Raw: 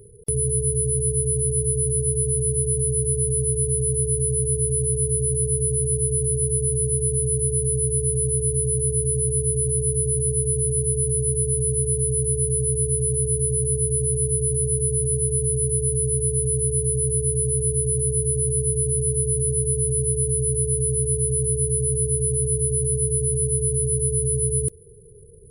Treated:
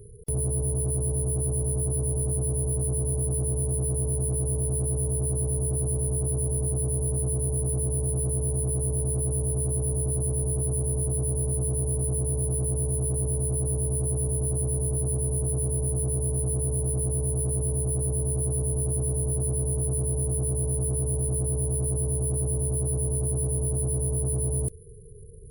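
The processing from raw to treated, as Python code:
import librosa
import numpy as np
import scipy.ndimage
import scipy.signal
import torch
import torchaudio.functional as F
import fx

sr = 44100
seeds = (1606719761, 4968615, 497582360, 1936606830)

y = fx.low_shelf(x, sr, hz=130.0, db=10.0)
y = 10.0 ** (-19.0 / 20.0) * np.tanh(y / 10.0 ** (-19.0 / 20.0))
y = F.gain(torch.from_numpy(y), -3.5).numpy()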